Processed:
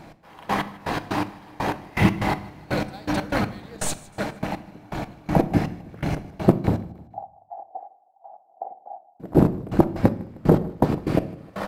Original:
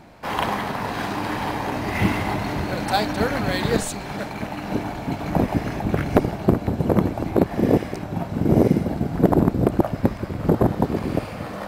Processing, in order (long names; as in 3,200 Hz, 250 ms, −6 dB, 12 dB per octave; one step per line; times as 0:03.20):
gate pattern "x...x..x." 122 BPM −24 dB
0:06.80–0:09.20: flat-topped band-pass 760 Hz, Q 5.8
repeating echo 155 ms, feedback 45%, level −22 dB
rectangular room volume 620 cubic metres, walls furnished, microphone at 0.62 metres
highs frequency-modulated by the lows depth 0.13 ms
level +2 dB